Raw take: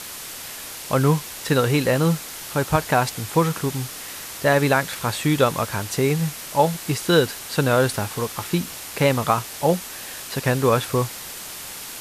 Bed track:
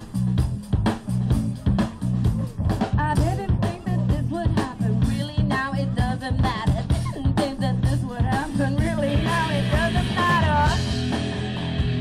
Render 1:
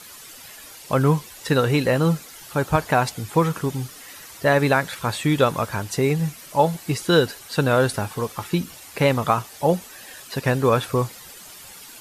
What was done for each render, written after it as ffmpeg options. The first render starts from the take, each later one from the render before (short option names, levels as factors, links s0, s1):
-af "afftdn=nr=11:nf=-36"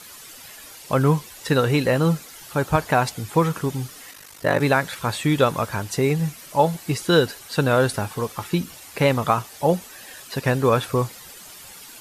-filter_complex "[0:a]asplit=3[s0][s1][s2];[s0]afade=t=out:st=4.11:d=0.02[s3];[s1]aeval=exprs='val(0)*sin(2*PI*25*n/s)':c=same,afade=t=in:st=4.11:d=0.02,afade=t=out:st=4.59:d=0.02[s4];[s2]afade=t=in:st=4.59:d=0.02[s5];[s3][s4][s5]amix=inputs=3:normalize=0"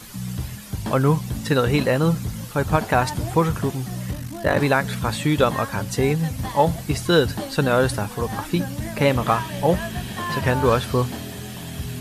-filter_complex "[1:a]volume=0.422[s0];[0:a][s0]amix=inputs=2:normalize=0"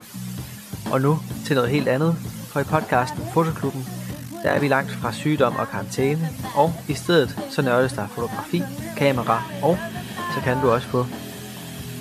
-af "highpass=130,adynamicequalizer=threshold=0.0141:dfrequency=2500:dqfactor=0.7:tfrequency=2500:tqfactor=0.7:attack=5:release=100:ratio=0.375:range=4:mode=cutabove:tftype=highshelf"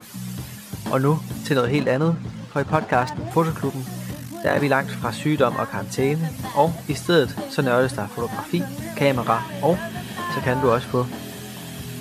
-filter_complex "[0:a]asettb=1/sr,asplit=3[s0][s1][s2];[s0]atrim=end=1.574[s3];[s1]atrim=start=1.57:end=3.31,asetpts=PTS-STARTPTS,afade=t=in:d=0.004:c=qsin,afade=t=out:st=1.736:d=0.004:c=qsin,adynamicsmooth=sensitivity=7.5:basefreq=3100[s4];[s2]atrim=start=3.306[s5];[s3][s4]acrossfade=d=0.004:c1=hsin:c2=qsin[s6];[s6][s5]acrossfade=d=0.004:c1=qsin:c2=hsin"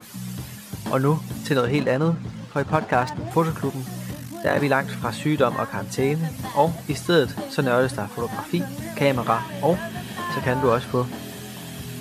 -af "volume=0.891"